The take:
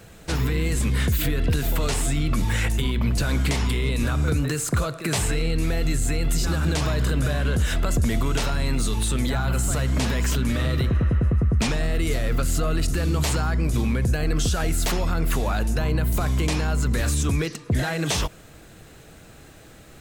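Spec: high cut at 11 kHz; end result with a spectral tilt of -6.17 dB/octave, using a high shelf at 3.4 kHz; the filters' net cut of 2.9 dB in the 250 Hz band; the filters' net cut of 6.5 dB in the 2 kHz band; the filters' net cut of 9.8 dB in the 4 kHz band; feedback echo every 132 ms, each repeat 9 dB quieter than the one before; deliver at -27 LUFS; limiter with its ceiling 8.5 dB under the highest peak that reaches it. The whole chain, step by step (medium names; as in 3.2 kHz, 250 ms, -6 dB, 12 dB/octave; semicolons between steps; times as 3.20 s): low-pass 11 kHz; peaking EQ 250 Hz -4 dB; peaking EQ 2 kHz -5 dB; treble shelf 3.4 kHz -7.5 dB; peaking EQ 4 kHz -5.5 dB; peak limiter -23 dBFS; feedback delay 132 ms, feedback 35%, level -9 dB; trim +4 dB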